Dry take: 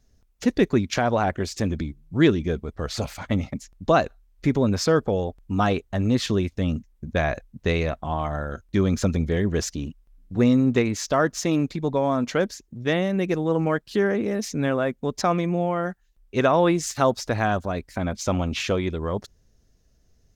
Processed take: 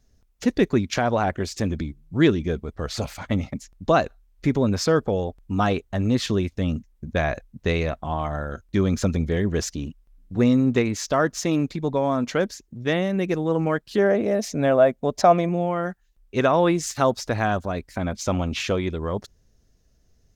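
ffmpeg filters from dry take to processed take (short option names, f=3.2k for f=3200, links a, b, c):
-filter_complex "[0:a]asettb=1/sr,asplit=3[a][b][c];[a]atrim=end=13.984[d];[b]atrim=start=13.98:end=15.49,asetpts=PTS-STARTPTS,afade=t=in:d=0.004:c=qsin,afade=t=out:st=1.506:d=0.004:c=qsin,equalizer=f=640:t=o:w=0.51:g=12.5[e];[c]atrim=start=15.486[f];[d][e]acrossfade=d=0.004:c1=hsin:c2=qsin[g];[g][f]acrossfade=d=0.004:c1=qsin:c2=hsin"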